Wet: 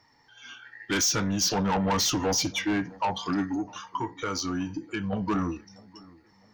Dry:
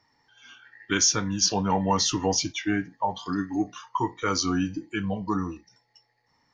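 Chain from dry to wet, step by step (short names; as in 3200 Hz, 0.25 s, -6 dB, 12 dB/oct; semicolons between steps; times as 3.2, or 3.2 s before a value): 3.54–5.13 compressor 2.5:1, threshold -34 dBFS, peak gain reduction 9.5 dB; soft clip -26 dBFS, distortion -8 dB; dark delay 0.656 s, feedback 39%, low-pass 1500 Hz, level -23 dB; gain +4.5 dB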